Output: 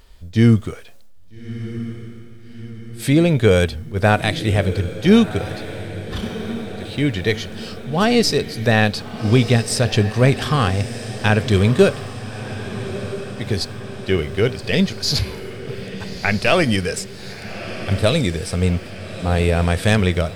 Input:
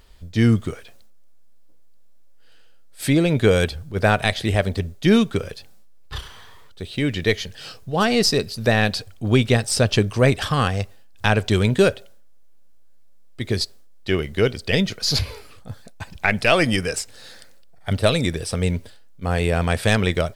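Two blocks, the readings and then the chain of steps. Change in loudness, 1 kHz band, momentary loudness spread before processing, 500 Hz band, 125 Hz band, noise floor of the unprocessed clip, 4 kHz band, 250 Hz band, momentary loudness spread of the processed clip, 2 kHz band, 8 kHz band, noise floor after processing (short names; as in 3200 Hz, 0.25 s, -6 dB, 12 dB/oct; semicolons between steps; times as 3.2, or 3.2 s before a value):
+1.5 dB, +1.5 dB, 17 LU, +2.0 dB, +3.5 dB, -43 dBFS, +0.5 dB, +3.5 dB, 16 LU, +1.0 dB, +0.5 dB, -37 dBFS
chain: harmonic-percussive split harmonic +5 dB; diffused feedback echo 1.281 s, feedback 59%, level -12.5 dB; gain -1 dB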